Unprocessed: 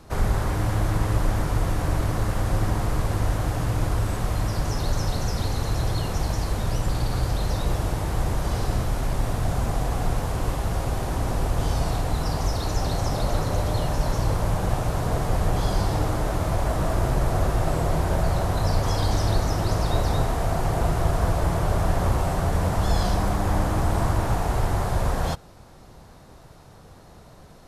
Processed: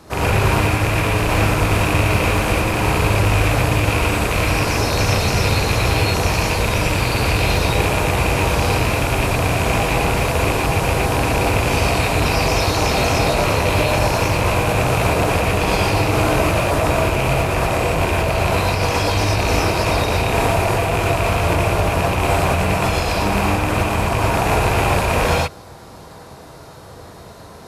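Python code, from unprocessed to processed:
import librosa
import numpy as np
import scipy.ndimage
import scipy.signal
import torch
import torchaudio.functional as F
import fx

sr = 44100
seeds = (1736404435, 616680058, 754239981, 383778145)

y = fx.rattle_buzz(x, sr, strikes_db=-22.0, level_db=-18.0)
y = fx.highpass(y, sr, hz=140.0, slope=6)
y = fx.over_compress(y, sr, threshold_db=-27.0, ratio=-0.5)
y = fx.rev_gated(y, sr, seeds[0], gate_ms=140, shape='rising', drr_db=-4.5)
y = F.gain(torch.from_numpy(y), 5.0).numpy()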